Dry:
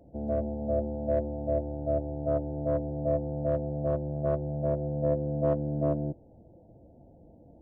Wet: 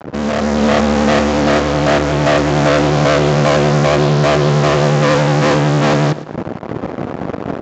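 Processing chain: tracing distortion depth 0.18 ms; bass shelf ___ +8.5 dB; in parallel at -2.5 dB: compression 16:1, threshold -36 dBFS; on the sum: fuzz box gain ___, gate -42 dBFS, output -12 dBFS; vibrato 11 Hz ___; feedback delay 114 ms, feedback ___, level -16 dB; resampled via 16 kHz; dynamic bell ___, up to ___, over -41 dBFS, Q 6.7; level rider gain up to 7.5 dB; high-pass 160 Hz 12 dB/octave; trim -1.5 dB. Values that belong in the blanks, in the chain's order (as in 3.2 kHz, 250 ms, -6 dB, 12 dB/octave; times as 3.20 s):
270 Hz, 43 dB, 56 cents, 33%, 900 Hz, -3 dB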